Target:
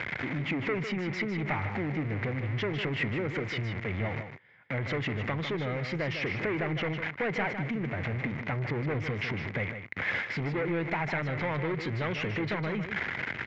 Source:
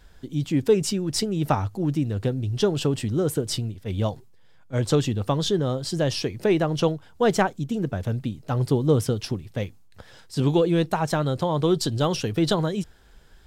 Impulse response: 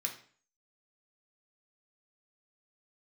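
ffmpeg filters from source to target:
-af "aeval=exprs='val(0)+0.5*0.0473*sgn(val(0))':channel_layout=same,highpass=frequency=96:width=0.5412,highpass=frequency=96:width=1.3066,aresample=16000,asoftclip=type=tanh:threshold=-20.5dB,aresample=44100,acompressor=threshold=-28dB:ratio=6,lowpass=frequency=2100:width_type=q:width=8.4,aecho=1:1:153:0.376,volume=-2.5dB"

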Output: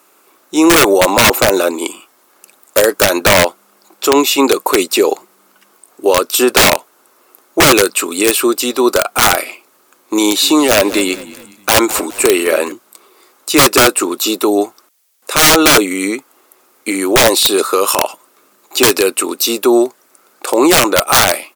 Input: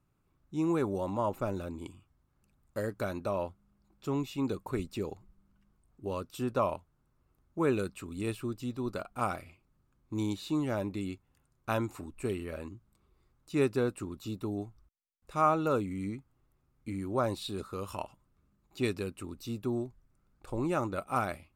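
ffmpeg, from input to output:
ffmpeg -i in.wav -filter_complex "[0:a]highpass=frequency=370:width=0.5412,highpass=frequency=370:width=1.3066,aemphasis=mode=production:type=cd,aeval=exprs='(mod(22.4*val(0)+1,2)-1)/22.4':channel_layout=same,asplit=3[link_01][link_02][link_03];[link_01]afade=type=out:start_time=10.42:duration=0.02[link_04];[link_02]asplit=4[link_05][link_06][link_07][link_08];[link_06]adelay=207,afreqshift=-35,volume=-19dB[link_09];[link_07]adelay=414,afreqshift=-70,volume=-27dB[link_10];[link_08]adelay=621,afreqshift=-105,volume=-34.9dB[link_11];[link_05][link_09][link_10][link_11]amix=inputs=4:normalize=0,afade=type=in:start_time=10.42:duration=0.02,afade=type=out:start_time=12.71:duration=0.02[link_12];[link_03]afade=type=in:start_time=12.71:duration=0.02[link_13];[link_04][link_12][link_13]amix=inputs=3:normalize=0,alimiter=level_in=30.5dB:limit=-1dB:release=50:level=0:latency=1,volume=-1dB" out.wav

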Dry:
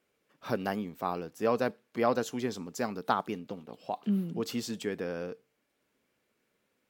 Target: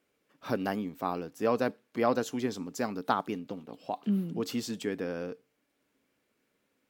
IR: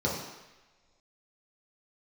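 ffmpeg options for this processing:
-af "equalizer=frequency=280:width_type=o:width=0.2:gain=7"

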